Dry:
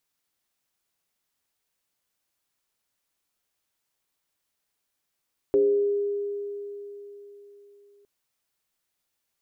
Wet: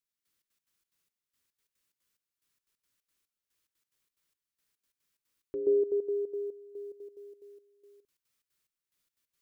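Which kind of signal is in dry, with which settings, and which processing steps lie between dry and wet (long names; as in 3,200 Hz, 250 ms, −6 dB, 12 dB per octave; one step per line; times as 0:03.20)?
two-operator FM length 2.51 s, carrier 406 Hz, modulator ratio 0.29, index 0.52, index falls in 1.07 s exponential, decay 3.80 s, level −16 dB
parametric band 740 Hz −12 dB 0.62 octaves
gate pattern "...xx.x.xx.xx" 180 BPM −12 dB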